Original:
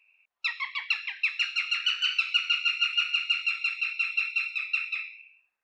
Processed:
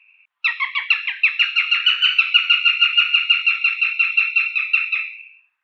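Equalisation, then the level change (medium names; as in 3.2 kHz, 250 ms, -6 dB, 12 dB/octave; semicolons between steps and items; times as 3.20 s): high-order bell 1.8 kHz +15 dB 2.3 oct; -4.0 dB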